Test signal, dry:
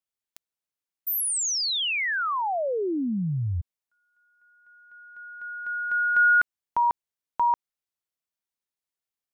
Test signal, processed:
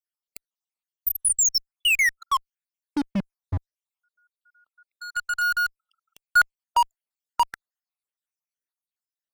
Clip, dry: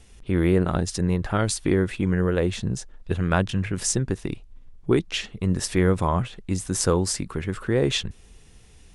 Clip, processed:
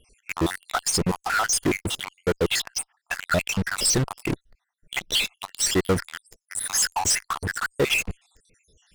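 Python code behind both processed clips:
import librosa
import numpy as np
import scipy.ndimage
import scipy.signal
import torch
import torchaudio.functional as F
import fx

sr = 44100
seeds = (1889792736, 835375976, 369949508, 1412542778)

p1 = fx.spec_dropout(x, sr, seeds[0], share_pct=73)
p2 = fx.low_shelf(p1, sr, hz=350.0, db=-11.5)
p3 = fx.fuzz(p2, sr, gain_db=48.0, gate_db=-48.0)
p4 = p2 + (p3 * librosa.db_to_amplitude(-11.0))
y = p4 * librosa.db_to_amplitude(1.5)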